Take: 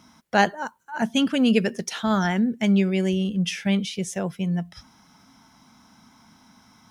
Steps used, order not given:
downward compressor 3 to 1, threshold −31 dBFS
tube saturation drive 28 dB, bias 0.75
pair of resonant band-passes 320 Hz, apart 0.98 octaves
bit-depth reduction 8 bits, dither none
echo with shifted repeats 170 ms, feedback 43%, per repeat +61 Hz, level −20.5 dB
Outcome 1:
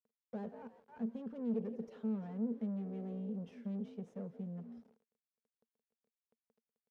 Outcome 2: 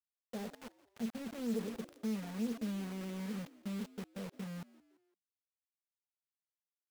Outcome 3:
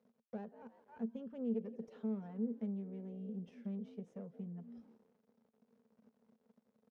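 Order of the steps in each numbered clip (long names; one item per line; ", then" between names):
echo with shifted repeats, then tube saturation, then bit-depth reduction, then downward compressor, then pair of resonant band-passes
tube saturation, then downward compressor, then pair of resonant band-passes, then bit-depth reduction, then echo with shifted repeats
echo with shifted repeats, then bit-depth reduction, then downward compressor, then tube saturation, then pair of resonant band-passes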